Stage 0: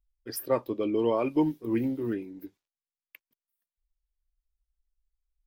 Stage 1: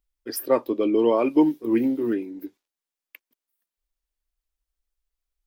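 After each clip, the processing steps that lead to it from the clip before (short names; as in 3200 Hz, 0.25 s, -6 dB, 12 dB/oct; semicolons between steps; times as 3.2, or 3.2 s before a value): resonant low shelf 190 Hz -8.5 dB, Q 1.5; gain +5 dB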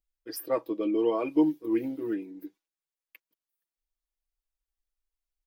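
comb 6.2 ms, depth 72%; gain -9 dB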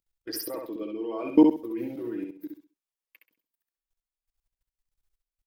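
level quantiser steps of 21 dB; feedback echo 66 ms, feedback 26%, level -4 dB; gain +8 dB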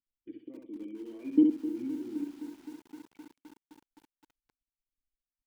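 vocal tract filter i; lo-fi delay 0.259 s, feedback 80%, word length 8-bit, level -14 dB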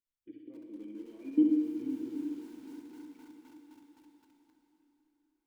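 plate-style reverb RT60 4.1 s, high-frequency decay 0.95×, DRR 2.5 dB; gain -4.5 dB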